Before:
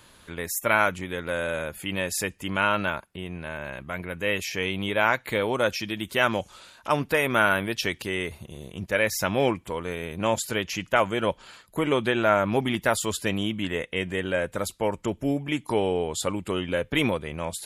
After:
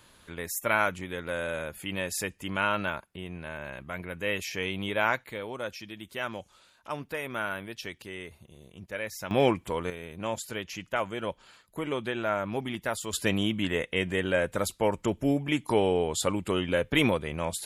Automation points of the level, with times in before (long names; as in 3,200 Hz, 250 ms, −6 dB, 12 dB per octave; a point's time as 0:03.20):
−4 dB
from 0:05.24 −11.5 dB
from 0:09.31 0 dB
from 0:09.90 −8 dB
from 0:13.13 0 dB